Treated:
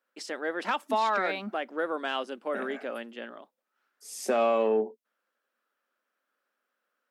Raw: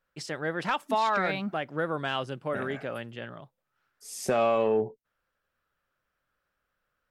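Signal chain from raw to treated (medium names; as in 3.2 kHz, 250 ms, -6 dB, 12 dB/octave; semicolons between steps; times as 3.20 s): elliptic high-pass 220 Hz, stop band 40 dB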